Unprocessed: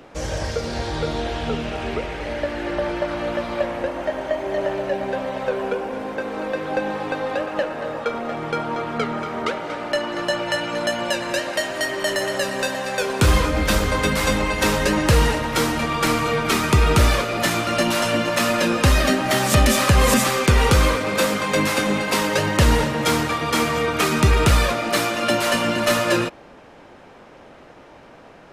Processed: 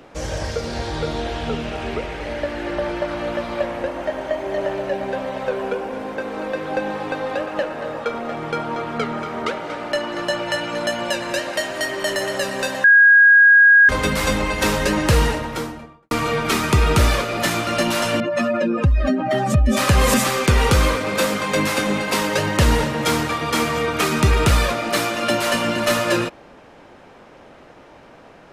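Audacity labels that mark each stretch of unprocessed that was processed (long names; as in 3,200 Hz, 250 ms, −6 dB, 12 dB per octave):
12.840000	13.890000	beep over 1,640 Hz −7 dBFS
15.160000	16.110000	fade out and dull
18.200000	19.770000	expanding power law on the bin magnitudes exponent 2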